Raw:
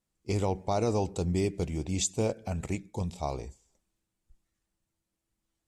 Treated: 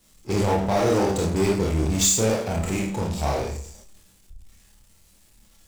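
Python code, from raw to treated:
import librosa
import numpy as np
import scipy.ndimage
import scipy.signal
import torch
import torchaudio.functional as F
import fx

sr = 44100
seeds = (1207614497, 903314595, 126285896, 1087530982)

p1 = fx.rev_schroeder(x, sr, rt60_s=0.4, comb_ms=28, drr_db=-1.0)
p2 = fx.power_curve(p1, sr, exponent=0.5)
p3 = p2 + fx.room_flutter(p2, sr, wall_m=4.4, rt60_s=0.2, dry=0)
p4 = fx.band_widen(p3, sr, depth_pct=40)
y = p4 * librosa.db_to_amplitude(-1.5)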